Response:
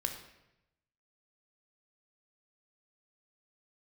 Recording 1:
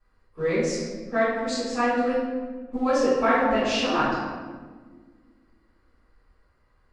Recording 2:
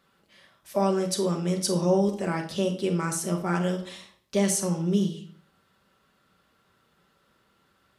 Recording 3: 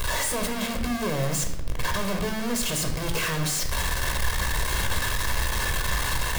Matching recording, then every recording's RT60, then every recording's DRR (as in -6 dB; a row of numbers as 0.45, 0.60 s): 3; 1.5, 0.50, 0.90 s; -15.5, 2.0, 4.5 dB